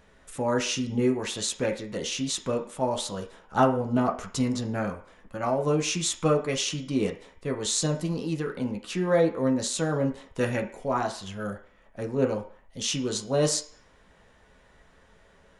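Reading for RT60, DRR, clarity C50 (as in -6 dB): 0.50 s, 1.5 dB, 11.0 dB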